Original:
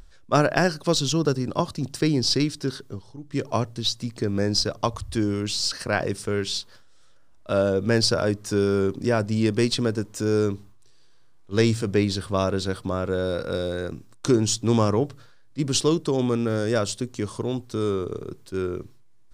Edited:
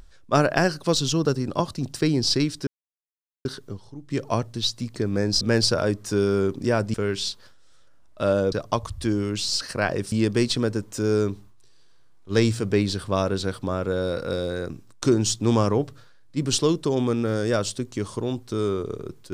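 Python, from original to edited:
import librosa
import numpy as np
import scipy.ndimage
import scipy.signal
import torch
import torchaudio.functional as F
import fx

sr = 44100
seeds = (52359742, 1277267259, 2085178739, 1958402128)

y = fx.edit(x, sr, fx.insert_silence(at_s=2.67, length_s=0.78),
    fx.swap(start_s=4.63, length_s=1.6, other_s=7.81, other_length_s=1.53), tone=tone)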